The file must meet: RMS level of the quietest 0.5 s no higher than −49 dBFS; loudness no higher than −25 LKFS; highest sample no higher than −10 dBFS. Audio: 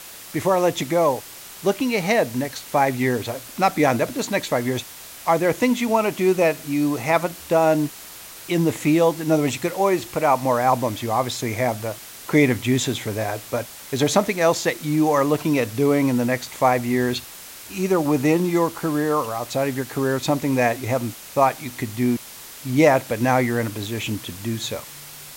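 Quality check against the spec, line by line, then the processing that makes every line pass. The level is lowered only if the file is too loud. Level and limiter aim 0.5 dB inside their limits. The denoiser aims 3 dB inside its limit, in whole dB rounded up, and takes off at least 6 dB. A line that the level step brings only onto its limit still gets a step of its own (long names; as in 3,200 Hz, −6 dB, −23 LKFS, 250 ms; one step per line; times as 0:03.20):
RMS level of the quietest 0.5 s −40 dBFS: out of spec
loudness −21.5 LKFS: out of spec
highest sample −4.5 dBFS: out of spec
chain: broadband denoise 8 dB, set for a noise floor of −40 dBFS
level −4 dB
brickwall limiter −10.5 dBFS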